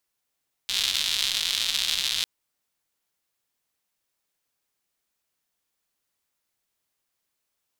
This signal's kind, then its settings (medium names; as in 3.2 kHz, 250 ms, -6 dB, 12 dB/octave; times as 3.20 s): rain from filtered ticks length 1.55 s, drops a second 210, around 3.6 kHz, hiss -23 dB